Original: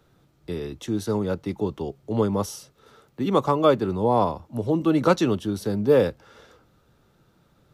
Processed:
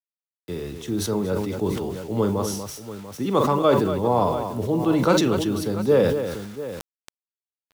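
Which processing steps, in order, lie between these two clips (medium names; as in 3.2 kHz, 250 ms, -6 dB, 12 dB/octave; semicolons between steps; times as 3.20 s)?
multi-tap echo 41/43/238/690 ms -19/-12.5/-10/-14 dB; bit crusher 8-bit; decay stretcher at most 41 dB/s; trim -1 dB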